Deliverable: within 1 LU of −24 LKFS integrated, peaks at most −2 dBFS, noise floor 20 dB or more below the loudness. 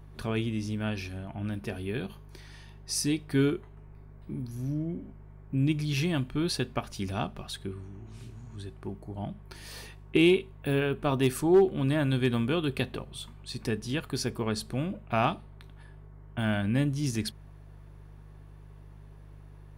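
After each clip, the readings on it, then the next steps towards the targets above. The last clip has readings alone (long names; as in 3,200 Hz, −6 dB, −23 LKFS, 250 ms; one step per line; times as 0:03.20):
mains hum 50 Hz; hum harmonics up to 150 Hz; level of the hum −46 dBFS; integrated loudness −30.0 LKFS; sample peak −13.5 dBFS; target loudness −24.0 LKFS
→ hum removal 50 Hz, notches 3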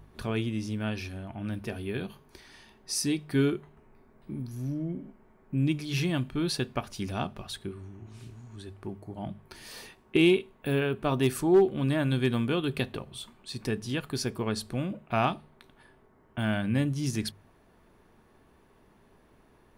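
mains hum none found; integrated loudness −30.0 LKFS; sample peak −13.5 dBFS; target loudness −24.0 LKFS
→ level +6 dB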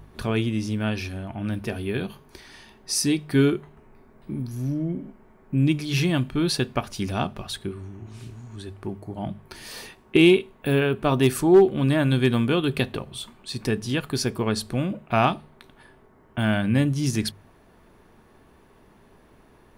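integrated loudness −24.0 LKFS; sample peak −7.5 dBFS; background noise floor −55 dBFS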